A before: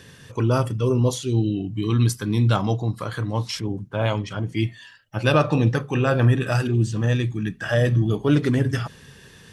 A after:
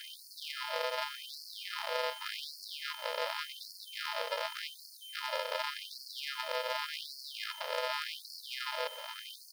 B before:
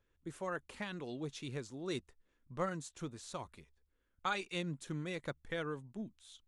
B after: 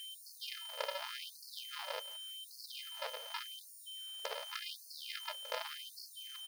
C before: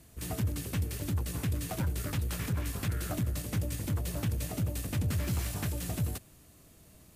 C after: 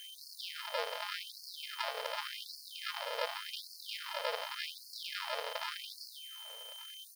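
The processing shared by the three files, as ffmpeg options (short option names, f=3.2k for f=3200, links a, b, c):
-filter_complex "[0:a]highpass=51,lowshelf=f=67:g=-9,bandreject=f=420:w=12,acrossover=split=120[a][b];[b]acompressor=threshold=-32dB:ratio=10[c];[a][c]amix=inputs=2:normalize=0,alimiter=level_in=2.5dB:limit=-24dB:level=0:latency=1:release=97,volume=-2.5dB,acompressor=threshold=-46dB:ratio=2,aresample=11025,acrusher=samples=29:mix=1:aa=0.000001,aresample=44100,asoftclip=type=hard:threshold=-35.5dB,aeval=exprs='val(0)+0.000708*sin(2*PI*3100*n/s)':c=same,acrusher=bits=10:mix=0:aa=0.000001,asplit=2[d][e];[e]aecho=0:1:172:0.126[f];[d][f]amix=inputs=2:normalize=0,afftfilt=real='re*gte(b*sr/1024,400*pow(4300/400,0.5+0.5*sin(2*PI*0.87*pts/sr)))':imag='im*gte(b*sr/1024,400*pow(4300/400,0.5+0.5*sin(2*PI*0.87*pts/sr)))':win_size=1024:overlap=0.75,volume=15.5dB"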